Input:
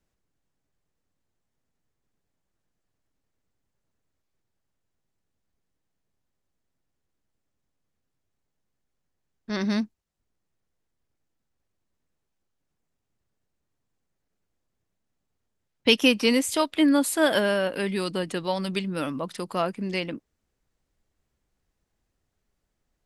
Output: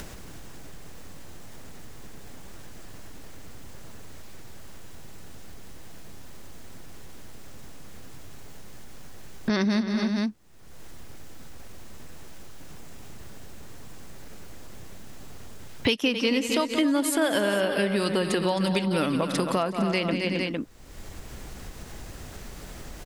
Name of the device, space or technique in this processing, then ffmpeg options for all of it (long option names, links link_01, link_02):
upward and downward compression: -filter_complex "[0:a]asettb=1/sr,asplit=3[link_01][link_02][link_03];[link_01]atrim=end=16.024[link_04];[link_02]atrim=start=16.02:end=16.56,asetpts=PTS-STARTPTS,afade=type=in:duration=0.004:curve=qsin,afade=type=out:start_time=0.536:duration=0.004:curve=qsin,equalizer=frequency=9900:width=1.6:gain=-13.5[link_05];[link_03]atrim=start=16.556[link_06];[link_04][link_05]acrossfade=duration=0.004:curve1=hsin:curve2=qsin[link_07];[link_07][link_06]acrossfade=duration=0.004:curve1=qsin:curve2=hsin,aecho=1:1:178|265|365|457:0.211|0.266|0.126|0.188,acompressor=mode=upward:threshold=-22dB:ratio=2.5,acompressor=threshold=-28dB:ratio=5,volume=6.5dB"